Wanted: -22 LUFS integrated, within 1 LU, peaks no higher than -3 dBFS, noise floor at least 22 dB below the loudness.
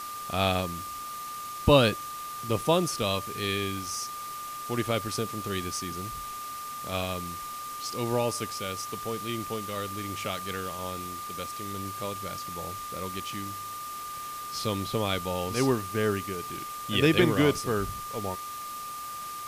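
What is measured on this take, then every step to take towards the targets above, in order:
steady tone 1.2 kHz; tone level -36 dBFS; noise floor -38 dBFS; noise floor target -52 dBFS; loudness -30.0 LUFS; peak level -7.5 dBFS; loudness target -22.0 LUFS
-> band-stop 1.2 kHz, Q 30; noise print and reduce 14 dB; trim +8 dB; peak limiter -3 dBFS

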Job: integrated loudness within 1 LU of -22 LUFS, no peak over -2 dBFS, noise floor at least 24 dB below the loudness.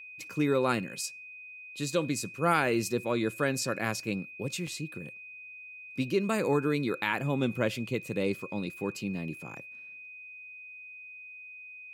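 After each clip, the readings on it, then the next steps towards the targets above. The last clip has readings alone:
dropouts 1; longest dropout 3.7 ms; steady tone 2.5 kHz; tone level -44 dBFS; loudness -31.0 LUFS; peak level -12.5 dBFS; loudness target -22.0 LUFS
-> interpolate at 4.67 s, 3.7 ms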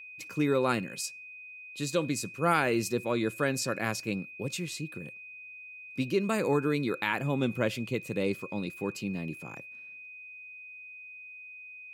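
dropouts 0; steady tone 2.5 kHz; tone level -44 dBFS
-> band-stop 2.5 kHz, Q 30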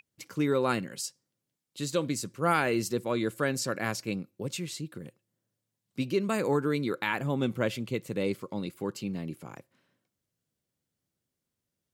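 steady tone not found; loudness -31.0 LUFS; peak level -13.0 dBFS; loudness target -22.0 LUFS
-> trim +9 dB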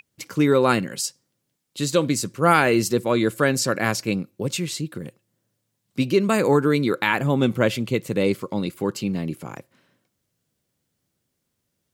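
loudness -22.0 LUFS; peak level -4.0 dBFS; noise floor -77 dBFS

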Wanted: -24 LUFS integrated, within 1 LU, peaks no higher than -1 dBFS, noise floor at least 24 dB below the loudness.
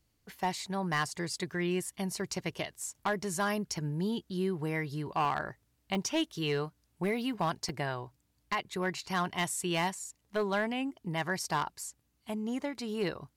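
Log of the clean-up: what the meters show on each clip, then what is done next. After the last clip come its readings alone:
clipped samples 0.6%; clipping level -23.0 dBFS; dropouts 5; longest dropout 1.1 ms; loudness -34.0 LUFS; peak level -23.0 dBFS; loudness target -24.0 LUFS
-> clip repair -23 dBFS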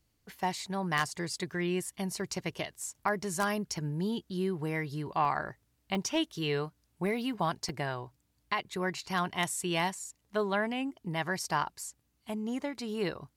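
clipped samples 0.0%; dropouts 5; longest dropout 1.1 ms
-> interpolate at 0.58/2.84/5.25/5.95/7.69 s, 1.1 ms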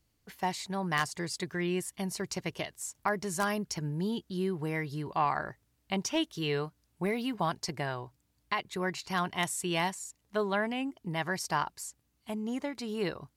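dropouts 0; loudness -33.5 LUFS; peak level -14.0 dBFS; loudness target -24.0 LUFS
-> trim +9.5 dB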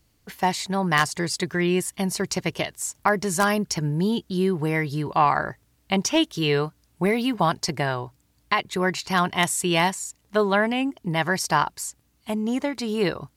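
loudness -24.0 LUFS; peak level -4.5 dBFS; noise floor -65 dBFS

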